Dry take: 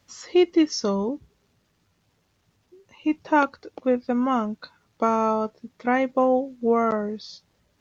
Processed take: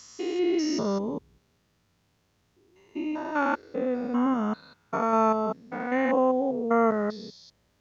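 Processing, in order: spectrogram pixelated in time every 200 ms; dynamic bell 1.7 kHz, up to +5 dB, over -45 dBFS, Q 2.5

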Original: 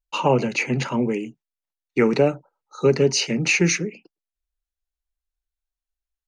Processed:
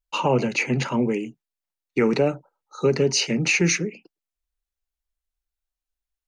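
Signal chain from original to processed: peak limiter -10 dBFS, peak gain reduction 3.5 dB

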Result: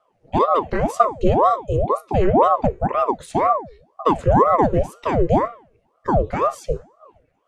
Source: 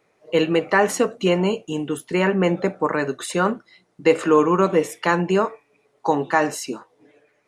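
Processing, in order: resonant low shelf 400 Hz +14 dB, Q 3; de-hum 233.9 Hz, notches 34; ring modulator with a swept carrier 560 Hz, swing 70%, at 2 Hz; trim -7.5 dB

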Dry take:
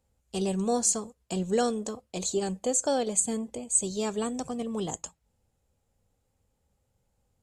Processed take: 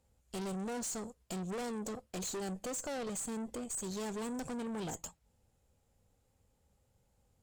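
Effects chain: compression 2:1, threshold -32 dBFS, peak gain reduction 7.5 dB; valve stage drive 40 dB, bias 0.5; trim +3 dB

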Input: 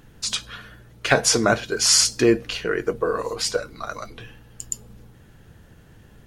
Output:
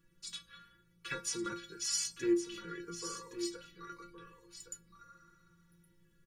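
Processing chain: Butterworth band-stop 680 Hz, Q 1.3; inharmonic resonator 170 Hz, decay 0.31 s, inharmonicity 0.008; delay 1117 ms -10 dB; spectral replace 5.09–5.95 s, 640–9500 Hz both; trim -6 dB

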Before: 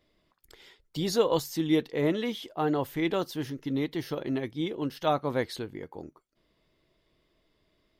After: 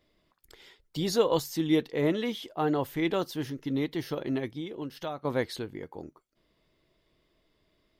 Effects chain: 4.50–5.25 s: compression 4:1, threshold -34 dBFS, peak gain reduction 11.5 dB

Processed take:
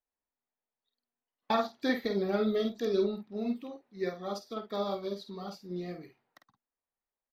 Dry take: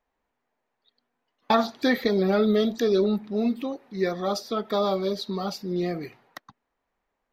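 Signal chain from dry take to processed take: doubling 50 ms -5.5 dB; upward expansion 1.5:1, over -41 dBFS; trim -7 dB

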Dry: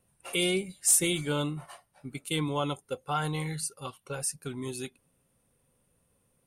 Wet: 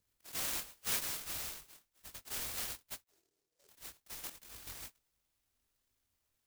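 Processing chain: bit-reversed sample order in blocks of 256 samples; 0.83–1.67 s: Chebyshev band-stop 160–4600 Hz, order 4; 3.02–3.69 s: auto-wah 400–1200 Hz, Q 15, down, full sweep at -29 dBFS; 4.27–4.67 s: compressor with a negative ratio -42 dBFS, ratio -1; chorus 2 Hz, delay 18.5 ms, depth 5.8 ms; delay time shaken by noise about 5.9 kHz, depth 0.32 ms; trim -5.5 dB

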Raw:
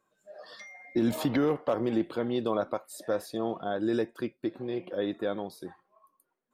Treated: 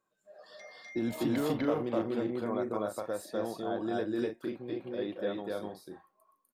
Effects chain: spectral selection erased 2.20–2.55 s, 2.5–5.9 kHz; on a send: loudspeakers at several distances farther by 86 m 0 dB, 99 m -6 dB; on the sum: trim -6.5 dB

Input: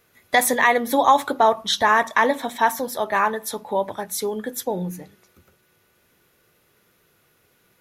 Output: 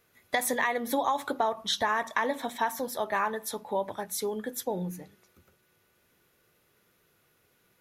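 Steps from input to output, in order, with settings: compression 10:1, threshold -17 dBFS, peak gain reduction 8 dB; trim -6 dB

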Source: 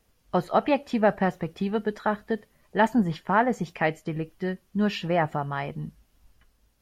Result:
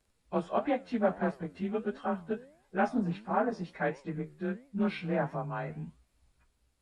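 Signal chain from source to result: frequency axis rescaled in octaves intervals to 92%; flange 1.5 Hz, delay 6.8 ms, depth 7.1 ms, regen +89%; loudspeaker Doppler distortion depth 0.15 ms

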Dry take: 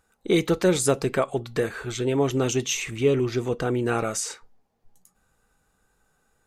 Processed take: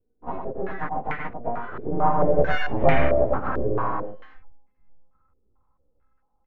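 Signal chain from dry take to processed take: partials quantised in pitch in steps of 4 st; Doppler pass-by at 2.62 s, 24 m/s, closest 5.2 m; tilt EQ -4 dB/octave; comb 3.9 ms, depth 89%; in parallel at -2 dB: compression, threshold -32 dBFS, peak gain reduction 17 dB; on the sum: full-wave rectifier; distance through air 130 m; delay 100 ms -4.5 dB; step-sequenced low-pass 4.5 Hz 410–2100 Hz

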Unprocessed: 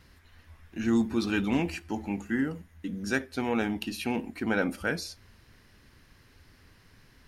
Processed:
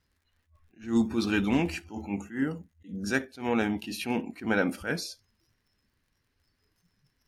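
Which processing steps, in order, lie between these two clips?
crackle 68 per s -43 dBFS; spectral noise reduction 19 dB; attacks held to a fixed rise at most 180 dB/s; trim +1.5 dB

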